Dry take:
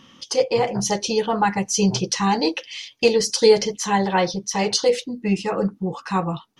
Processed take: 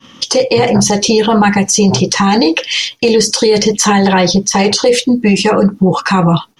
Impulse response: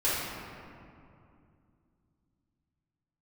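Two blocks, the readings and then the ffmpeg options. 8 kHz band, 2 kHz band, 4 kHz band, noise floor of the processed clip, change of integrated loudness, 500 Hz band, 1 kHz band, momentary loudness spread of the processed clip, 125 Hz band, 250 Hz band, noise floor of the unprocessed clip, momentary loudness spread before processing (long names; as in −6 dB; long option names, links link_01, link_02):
+11.0 dB, +11.0 dB, +11.0 dB, −40 dBFS, +10.0 dB, +8.0 dB, +8.5 dB, 2 LU, +12.5 dB, +12.5 dB, −54 dBFS, 8 LU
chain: -filter_complex "[0:a]agate=range=-33dB:threshold=-43dB:ratio=3:detection=peak,acrossover=split=380|1700[link_01][link_02][link_03];[link_01]acompressor=threshold=-23dB:ratio=4[link_04];[link_02]acompressor=threshold=-27dB:ratio=4[link_05];[link_03]acompressor=threshold=-29dB:ratio=4[link_06];[link_04][link_05][link_06]amix=inputs=3:normalize=0,alimiter=level_in=20dB:limit=-1dB:release=50:level=0:latency=1,volume=-1dB"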